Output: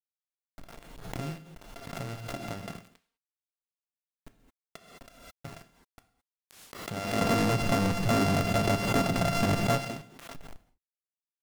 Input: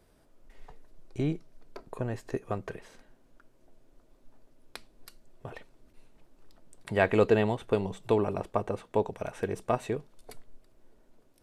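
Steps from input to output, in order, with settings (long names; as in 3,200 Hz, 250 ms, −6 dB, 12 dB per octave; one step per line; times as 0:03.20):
samples sorted by size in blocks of 64 samples
Bessel low-pass filter 9,600 Hz
parametric band 170 Hz +9.5 dB 1.1 octaves
downward compressor, threshold −29 dBFS, peak gain reduction 13 dB
0:07.21–0:09.85: leveller curve on the samples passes 5
bit reduction 7 bits
reverb whose tail is shaped and stops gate 230 ms falling, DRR 9 dB
background raised ahead of every attack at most 53 dB per second
level −5 dB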